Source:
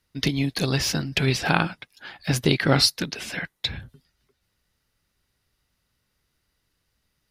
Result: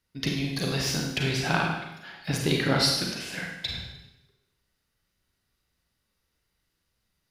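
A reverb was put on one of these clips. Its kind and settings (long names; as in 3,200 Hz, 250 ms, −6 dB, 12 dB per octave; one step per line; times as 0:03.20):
four-comb reverb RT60 0.9 s, combs from 33 ms, DRR 0 dB
level −6 dB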